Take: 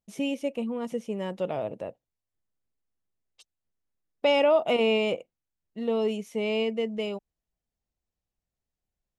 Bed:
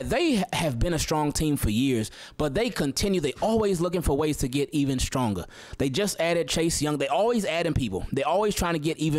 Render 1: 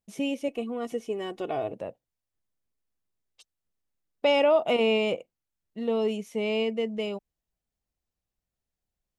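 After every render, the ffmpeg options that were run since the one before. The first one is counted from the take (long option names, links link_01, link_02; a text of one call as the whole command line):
ffmpeg -i in.wav -filter_complex "[0:a]asettb=1/sr,asplit=3[link_01][link_02][link_03];[link_01]atrim=end=0.484[link_04];[link_02]atrim=start=0.48:end=1.73,asetpts=PTS-STARTPTS,afade=type=in:duration=0.004:curve=qsin,afade=type=out:start_time=1.246:duration=0.004:curve=qsin,aecho=1:1:2.7:0.7,atrim=end_sample=55125[link_05];[link_03]atrim=start=1.726[link_06];[link_04][link_05]acrossfade=duration=0.004:curve1=hsin:curve2=qsin[link_07];[link_07][link_06]acrossfade=duration=0.004:curve1=qsin:curve2=hsin" out.wav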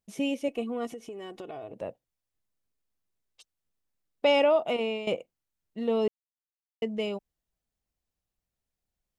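ffmpeg -i in.wav -filter_complex "[0:a]asettb=1/sr,asplit=3[link_01][link_02][link_03];[link_01]atrim=end=0.914[link_04];[link_02]atrim=start=0.91:end=1.82,asetpts=PTS-STARTPTS,afade=type=in:duration=0.004:curve=qsin,afade=type=out:start_time=0.906:duration=0.004:curve=qsin,acompressor=threshold=-37dB:ratio=6:attack=3.2:release=140:knee=1:detection=peak[link_05];[link_03]atrim=start=1.816[link_06];[link_04][link_05]acrossfade=duration=0.004:curve1=hsin:curve2=qsin[link_07];[link_07][link_06]acrossfade=duration=0.004:curve1=qsin:curve2=hsin,asplit=4[link_08][link_09][link_10][link_11];[link_08]atrim=end=5.07,asetpts=PTS-STARTPTS,afade=type=out:start_time=4.37:duration=0.7:silence=0.223872[link_12];[link_09]atrim=start=5.07:end=6.08,asetpts=PTS-STARTPTS,afade=type=in:duration=0.004:curve=hsin:silence=0.223872,afade=type=out:start_time=1.006:duration=0.004:curve=hsin[link_13];[link_10]atrim=start=6.08:end=6.82,asetpts=PTS-STARTPTS,volume=0[link_14];[link_11]atrim=start=6.82,asetpts=PTS-STARTPTS,afade=type=in:duration=0.004:curve=hsin[link_15];[link_12][link_13][link_14][link_15]concat=n=4:v=0:a=1" out.wav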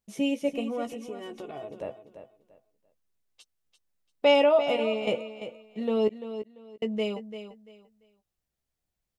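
ffmpeg -i in.wav -filter_complex "[0:a]asplit=2[link_01][link_02];[link_02]adelay=14,volume=-7.5dB[link_03];[link_01][link_03]amix=inputs=2:normalize=0,aecho=1:1:342|684|1026:0.282|0.0676|0.0162" out.wav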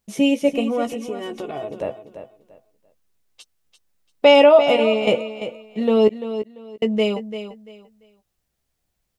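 ffmpeg -i in.wav -af "volume=9.5dB,alimiter=limit=-2dB:level=0:latency=1" out.wav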